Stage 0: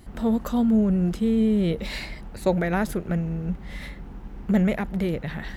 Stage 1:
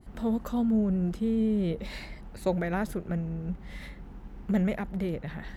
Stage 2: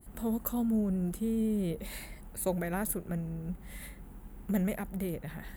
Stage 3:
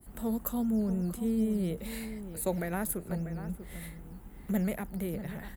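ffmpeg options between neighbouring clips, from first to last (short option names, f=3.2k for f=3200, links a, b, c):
-af "adynamicequalizer=threshold=0.00631:dfrequency=1700:dqfactor=0.7:tfrequency=1700:tqfactor=0.7:attack=5:release=100:ratio=0.375:range=2:mode=cutabove:tftype=highshelf,volume=-5.5dB"
-af "aexciter=amount=8.9:drive=5.7:freq=7.8k,volume=-4dB"
-filter_complex "[0:a]asplit=2[a][b];[b]adelay=641.4,volume=-11dB,highshelf=f=4k:g=-14.4[c];[a][c]amix=inputs=2:normalize=0,acrossover=split=150[d][e];[d]acrusher=samples=8:mix=1:aa=0.000001:lfo=1:lforange=4.8:lforate=3.9[f];[f][e]amix=inputs=2:normalize=0"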